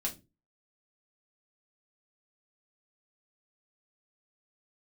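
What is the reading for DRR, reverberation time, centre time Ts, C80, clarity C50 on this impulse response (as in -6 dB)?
-1.5 dB, 0.25 s, 13 ms, 23.0 dB, 15.0 dB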